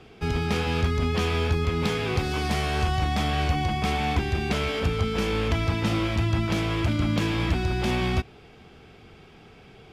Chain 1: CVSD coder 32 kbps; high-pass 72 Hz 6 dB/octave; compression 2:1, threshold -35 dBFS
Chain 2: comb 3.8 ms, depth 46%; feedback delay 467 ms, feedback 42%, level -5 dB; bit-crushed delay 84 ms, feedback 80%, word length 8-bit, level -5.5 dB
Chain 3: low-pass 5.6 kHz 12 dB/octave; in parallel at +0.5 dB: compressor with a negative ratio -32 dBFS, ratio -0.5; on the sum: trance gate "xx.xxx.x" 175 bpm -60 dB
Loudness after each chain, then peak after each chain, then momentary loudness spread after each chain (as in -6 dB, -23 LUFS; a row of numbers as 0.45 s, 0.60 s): -33.5 LUFS, -22.0 LUFS, -25.0 LUFS; -21.0 dBFS, -7.0 dBFS, -11.0 dBFS; 17 LU, 8 LU, 14 LU